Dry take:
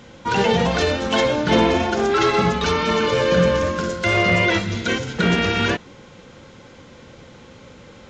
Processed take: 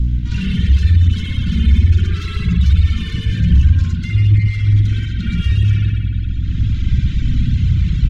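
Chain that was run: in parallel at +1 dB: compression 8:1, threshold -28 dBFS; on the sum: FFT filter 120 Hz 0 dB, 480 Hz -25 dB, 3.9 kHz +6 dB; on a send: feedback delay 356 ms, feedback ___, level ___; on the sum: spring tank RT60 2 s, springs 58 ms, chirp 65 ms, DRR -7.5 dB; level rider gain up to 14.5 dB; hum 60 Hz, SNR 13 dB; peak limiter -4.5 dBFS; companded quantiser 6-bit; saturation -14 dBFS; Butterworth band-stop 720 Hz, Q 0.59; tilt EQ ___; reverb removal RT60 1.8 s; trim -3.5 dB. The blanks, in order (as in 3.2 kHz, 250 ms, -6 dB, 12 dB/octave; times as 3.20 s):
35%, -22.5 dB, -4.5 dB/octave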